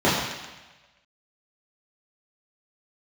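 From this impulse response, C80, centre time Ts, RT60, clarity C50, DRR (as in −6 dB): 3.5 dB, 72 ms, 1.2 s, 1.5 dB, −10.0 dB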